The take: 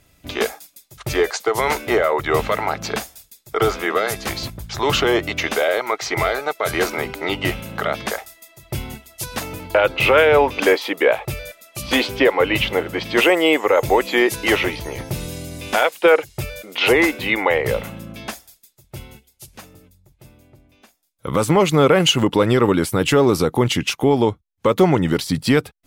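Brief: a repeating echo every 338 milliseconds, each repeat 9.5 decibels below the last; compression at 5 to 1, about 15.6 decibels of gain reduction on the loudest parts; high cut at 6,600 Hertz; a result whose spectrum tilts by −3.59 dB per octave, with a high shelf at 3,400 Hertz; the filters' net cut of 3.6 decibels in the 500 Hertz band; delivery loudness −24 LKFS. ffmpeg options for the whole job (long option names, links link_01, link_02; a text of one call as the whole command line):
ffmpeg -i in.wav -af "lowpass=6600,equalizer=frequency=500:width_type=o:gain=-4.5,highshelf=frequency=3400:gain=7.5,acompressor=threshold=-28dB:ratio=5,aecho=1:1:338|676|1014|1352:0.335|0.111|0.0365|0.012,volume=6.5dB" out.wav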